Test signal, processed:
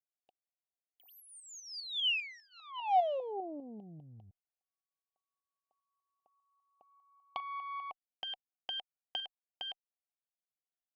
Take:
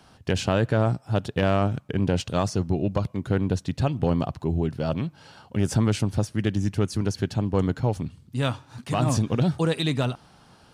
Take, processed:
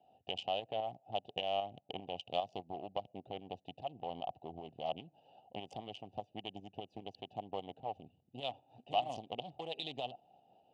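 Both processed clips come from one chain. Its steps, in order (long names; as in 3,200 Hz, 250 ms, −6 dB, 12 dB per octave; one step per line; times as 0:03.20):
adaptive Wiener filter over 41 samples
downward compressor 10 to 1, threshold −27 dBFS
tube saturation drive 22 dB, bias 0.55
shaped tremolo saw up 5 Hz, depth 50%
pair of resonant band-passes 1,500 Hz, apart 2 octaves
level +12 dB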